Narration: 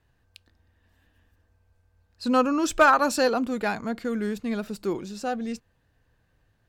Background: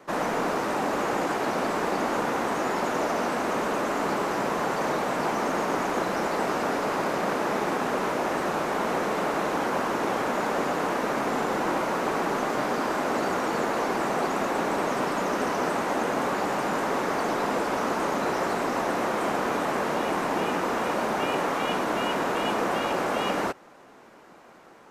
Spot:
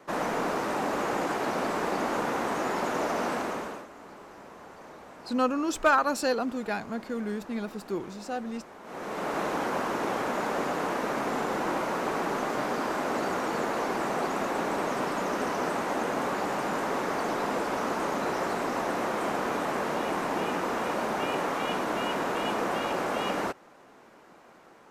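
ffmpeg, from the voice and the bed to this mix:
-filter_complex "[0:a]adelay=3050,volume=0.596[s0];[1:a]volume=5.62,afade=t=out:st=3.33:d=0.54:silence=0.125893,afade=t=in:st=8.83:d=0.56:silence=0.133352[s1];[s0][s1]amix=inputs=2:normalize=0"

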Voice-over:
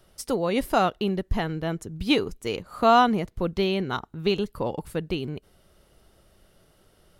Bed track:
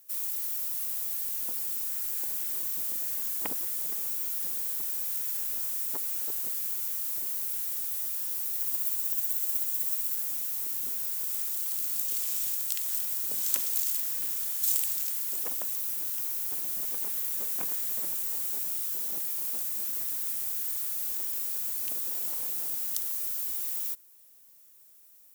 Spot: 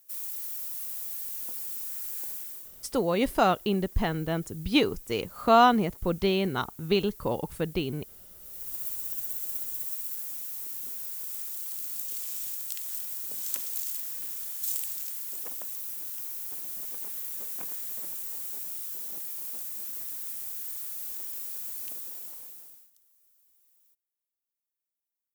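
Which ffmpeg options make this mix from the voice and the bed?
-filter_complex "[0:a]adelay=2650,volume=0.891[s0];[1:a]volume=2.99,afade=t=out:st=2.28:d=0.44:silence=0.199526,afade=t=in:st=8.39:d=0.44:silence=0.223872,afade=t=out:st=21.81:d=1.1:silence=0.0375837[s1];[s0][s1]amix=inputs=2:normalize=0"

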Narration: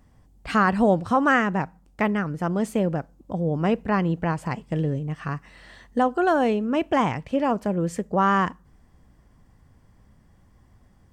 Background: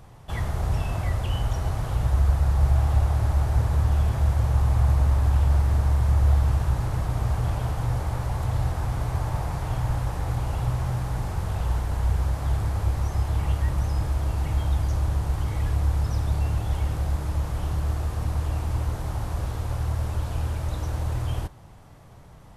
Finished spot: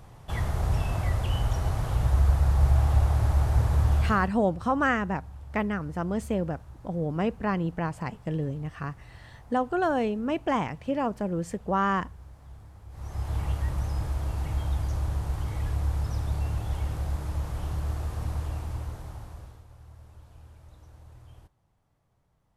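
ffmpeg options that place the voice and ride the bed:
-filter_complex "[0:a]adelay=3550,volume=0.562[s0];[1:a]volume=7.5,afade=t=out:st=3.95:d=0.37:silence=0.0794328,afade=t=in:st=12.89:d=0.46:silence=0.11885,afade=t=out:st=18.3:d=1.35:silence=0.11885[s1];[s0][s1]amix=inputs=2:normalize=0"

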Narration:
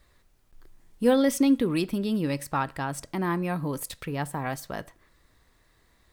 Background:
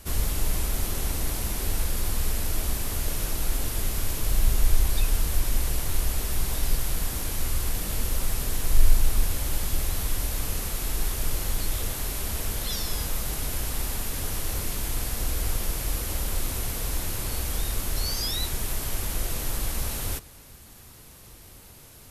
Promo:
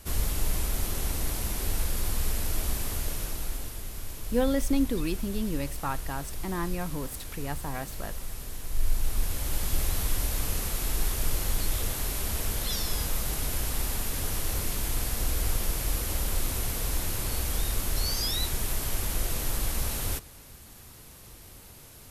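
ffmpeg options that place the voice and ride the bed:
-filter_complex "[0:a]adelay=3300,volume=0.562[s0];[1:a]volume=2.51,afade=t=out:st=2.84:d=0.97:silence=0.375837,afade=t=in:st=8.71:d=1.11:silence=0.316228[s1];[s0][s1]amix=inputs=2:normalize=0"

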